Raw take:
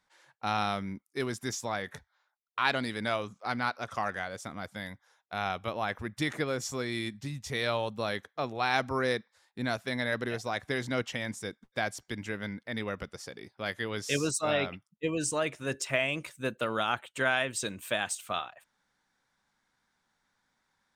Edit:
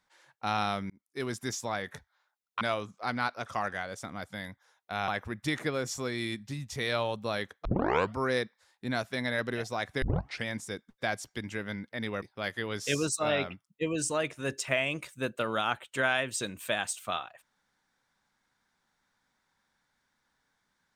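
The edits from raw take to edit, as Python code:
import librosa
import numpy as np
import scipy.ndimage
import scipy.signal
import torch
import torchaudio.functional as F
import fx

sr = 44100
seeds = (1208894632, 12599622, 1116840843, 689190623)

y = fx.edit(x, sr, fx.fade_in_span(start_s=0.9, length_s=0.41),
    fx.cut(start_s=2.61, length_s=0.42),
    fx.cut(start_s=5.5, length_s=0.32),
    fx.tape_start(start_s=8.39, length_s=0.53),
    fx.tape_start(start_s=10.76, length_s=0.43),
    fx.cut(start_s=12.96, length_s=0.48), tone=tone)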